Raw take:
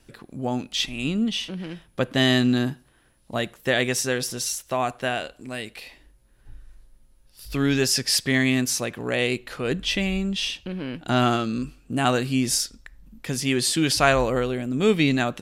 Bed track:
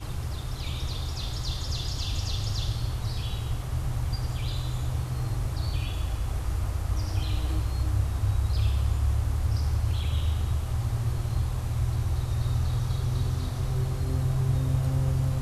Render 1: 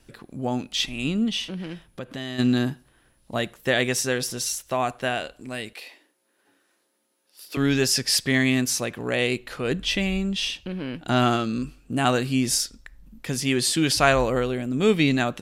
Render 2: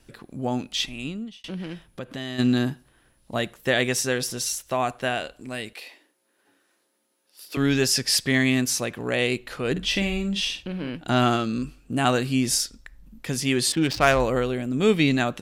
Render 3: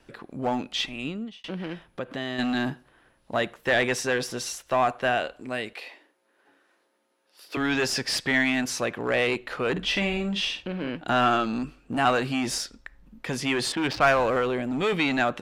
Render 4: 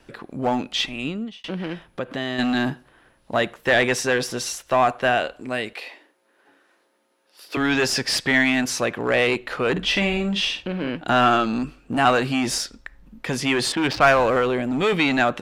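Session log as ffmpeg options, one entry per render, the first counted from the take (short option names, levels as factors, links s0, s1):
-filter_complex "[0:a]asplit=3[s0][s1][s2];[s0]afade=t=out:st=1.88:d=0.02[s3];[s1]acompressor=threshold=0.0178:ratio=2.5:attack=3.2:release=140:knee=1:detection=peak,afade=t=in:st=1.88:d=0.02,afade=t=out:st=2.38:d=0.02[s4];[s2]afade=t=in:st=2.38:d=0.02[s5];[s3][s4][s5]amix=inputs=3:normalize=0,asettb=1/sr,asplit=3[s6][s7][s8];[s6]atrim=end=5.734[s9];[s7]atrim=start=5.73:end=7.57,asetpts=PTS-STARTPTS,afade=t=in:d=0.004:c=qsin,afade=t=out:st=1.836:d=0.004:c=qsin,highpass=f=280:w=0.5412,highpass=f=280:w=1.3066[s10];[s8]atrim=start=7.566[s11];[s9][s10]acrossfade=d=0.004:c1=hsin:c2=qsin[s12];[s12][s11]acrossfade=d=0.004:c1=qsin:c2=hsin"
-filter_complex "[0:a]asettb=1/sr,asplit=3[s0][s1][s2];[s0]atrim=end=9.714[s3];[s1]atrim=start=9.71:end=10.9,asetpts=PTS-STARTPTS,afade=t=in:d=0.004:c=qsin,afade=t=out:st=1.186:d=0.004:c=qsin,asplit=2[s4][s5];[s5]adelay=50,volume=0.335[s6];[s4][s6]amix=inputs=2:normalize=0,atrim=end_sample=52479[s7];[s2]atrim=start=10.896[s8];[s3][s7]acrossfade=d=0.004:c1=hsin:c2=qsin[s9];[s9][s8]acrossfade=d=0.004:c1=qsin:c2=hsin,asettb=1/sr,asplit=3[s10][s11][s12];[s10]atrim=end=13.724[s13];[s11]atrim=start=13.72:end=14.2,asetpts=PTS-STARTPTS,afade=t=in:d=0.004:c=qsin,afade=t=out:st=0.476:d=0.004:c=qsin,adynamicsmooth=sensitivity=1.5:basefreq=1300[s14];[s12]atrim=start=14.196[s15];[s13][s14]acrossfade=d=0.004:c1=hsin:c2=qsin[s16];[s16][s15]acrossfade=d=0.004:c1=qsin:c2=hsin,asplit=2[s17][s18];[s17]atrim=end=1.44,asetpts=PTS-STARTPTS,afade=t=out:st=0.7:d=0.74[s19];[s18]atrim=start=1.44,asetpts=PTS-STARTPTS,afade=t=in:d=0.004:c=hsin[s20];[s19][s20]concat=n=2:v=0:a=1"
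-filter_complex "[0:a]asplit=2[s0][s1];[s1]highpass=f=720:p=1,volume=4.47,asoftclip=type=tanh:threshold=0.631[s2];[s0][s2]amix=inputs=2:normalize=0,lowpass=f=1200:p=1,volume=0.501,acrossover=split=750|2200[s3][s4][s5];[s3]volume=17.8,asoftclip=hard,volume=0.0562[s6];[s6][s4][s5]amix=inputs=3:normalize=0"
-af "volume=1.68"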